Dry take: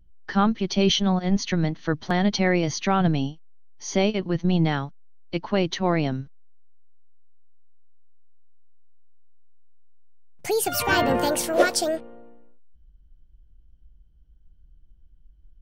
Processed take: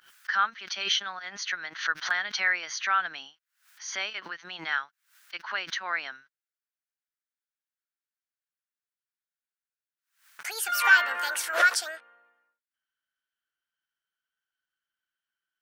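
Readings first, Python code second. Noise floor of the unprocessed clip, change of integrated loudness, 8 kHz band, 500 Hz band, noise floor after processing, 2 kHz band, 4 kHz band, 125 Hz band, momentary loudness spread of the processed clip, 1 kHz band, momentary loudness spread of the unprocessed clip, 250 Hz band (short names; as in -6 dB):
-54 dBFS, -3.5 dB, -3.5 dB, -18.0 dB, under -85 dBFS, +5.5 dB, -2.0 dB, under -35 dB, 17 LU, -3.0 dB, 10 LU, -31.5 dB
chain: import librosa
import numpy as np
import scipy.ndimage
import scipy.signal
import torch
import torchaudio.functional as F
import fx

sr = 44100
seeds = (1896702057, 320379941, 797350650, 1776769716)

y = fx.highpass_res(x, sr, hz=1500.0, q=3.8)
y = fx.pre_swell(y, sr, db_per_s=130.0)
y = y * librosa.db_to_amplitude(-4.5)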